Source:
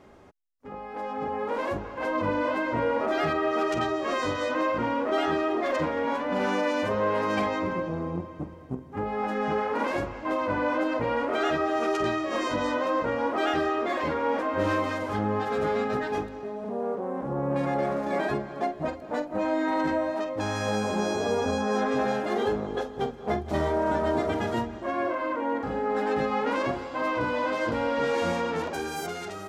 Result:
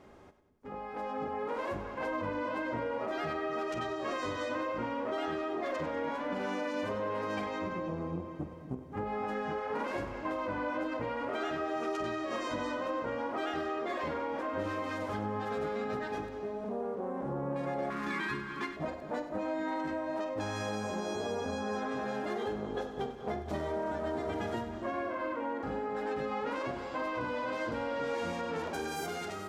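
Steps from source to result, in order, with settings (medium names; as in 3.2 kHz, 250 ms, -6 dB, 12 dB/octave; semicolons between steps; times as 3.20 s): 17.90–18.77 s: FFT filter 340 Hz 0 dB, 680 Hz -25 dB, 980 Hz +5 dB, 2.5 kHz +9 dB, 6.7 kHz +4 dB; compression, threshold -29 dBFS, peak gain reduction 8 dB; two-band feedback delay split 410 Hz, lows 248 ms, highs 97 ms, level -12 dB; trim -3 dB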